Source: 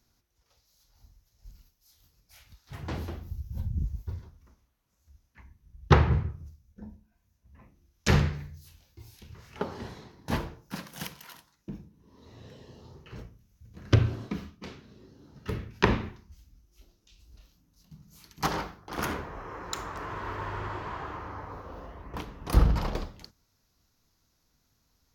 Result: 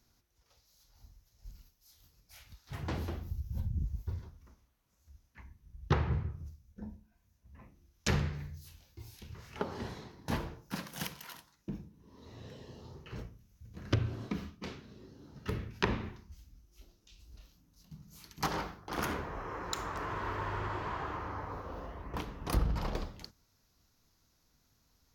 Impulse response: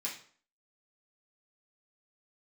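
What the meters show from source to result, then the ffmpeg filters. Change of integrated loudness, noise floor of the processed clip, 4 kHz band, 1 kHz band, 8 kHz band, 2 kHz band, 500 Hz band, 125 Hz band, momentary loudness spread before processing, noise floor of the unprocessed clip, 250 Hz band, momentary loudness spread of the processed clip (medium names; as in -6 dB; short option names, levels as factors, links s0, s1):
-7.0 dB, -73 dBFS, -4.0 dB, -4.5 dB, -3.0 dB, -5.0 dB, -5.5 dB, -7.0 dB, 23 LU, -73 dBFS, -5.5 dB, 22 LU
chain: -af "acompressor=threshold=0.0224:ratio=2"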